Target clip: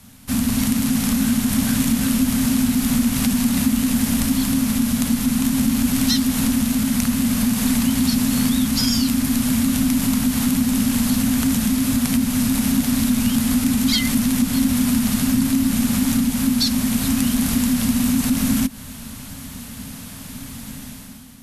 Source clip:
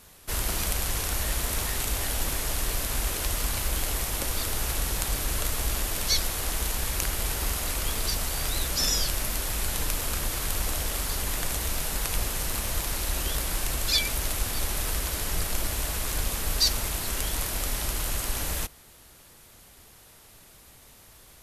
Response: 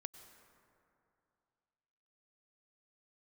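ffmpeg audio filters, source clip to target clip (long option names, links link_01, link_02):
-af "dynaudnorm=framelen=100:gausssize=11:maxgain=11.5dB,lowshelf=frequency=470:width_type=q:width=3:gain=6.5,acompressor=threshold=-19dB:ratio=6,afreqshift=-280,volume=3.5dB"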